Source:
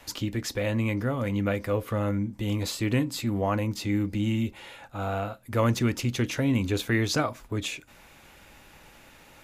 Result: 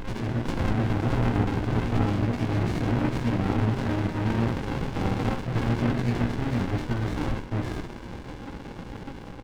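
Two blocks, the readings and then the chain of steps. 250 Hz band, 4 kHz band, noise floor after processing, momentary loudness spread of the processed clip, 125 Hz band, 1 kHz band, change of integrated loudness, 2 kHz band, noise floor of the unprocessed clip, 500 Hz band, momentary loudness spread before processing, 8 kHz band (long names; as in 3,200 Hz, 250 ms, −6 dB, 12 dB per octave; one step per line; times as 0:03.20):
+1.0 dB, −5.0 dB, −40 dBFS, 14 LU, +3.5 dB, +2.5 dB, +1.0 dB, −1.0 dB, −53 dBFS, −1.5 dB, 7 LU, below −10 dB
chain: hearing-aid frequency compression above 1,400 Hz 4 to 1
automatic gain control gain up to 10.5 dB
brickwall limiter −10 dBFS, peak gain reduction 7 dB
reversed playback
downward compressor 5 to 1, threshold −27 dBFS, peak gain reduction 12 dB
reversed playback
hollow resonant body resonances 560/800/1,300 Hz, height 18 dB, ringing for 95 ms
gain into a clipping stage and back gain 19 dB
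on a send: backwards echo 600 ms −8.5 dB
on the sum: delay with pitch and tempo change per echo 88 ms, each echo +3 semitones, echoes 3, each echo −6 dB
double-tracking delay 17 ms −2.5 dB
delay with a band-pass on its return 102 ms, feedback 69%, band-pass 1,100 Hz, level −12 dB
four-comb reverb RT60 0.78 s, combs from 26 ms, DRR 9.5 dB
windowed peak hold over 65 samples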